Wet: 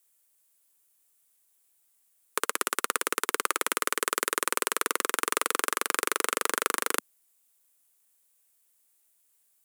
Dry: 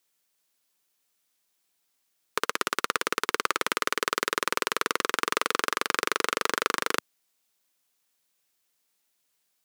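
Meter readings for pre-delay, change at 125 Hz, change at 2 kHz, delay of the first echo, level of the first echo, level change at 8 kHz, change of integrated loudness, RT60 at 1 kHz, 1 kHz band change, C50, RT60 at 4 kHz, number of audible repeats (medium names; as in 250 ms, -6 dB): no reverb, under -10 dB, -2.0 dB, no echo, no echo, +5.0 dB, -0.5 dB, no reverb, -1.5 dB, no reverb, no reverb, no echo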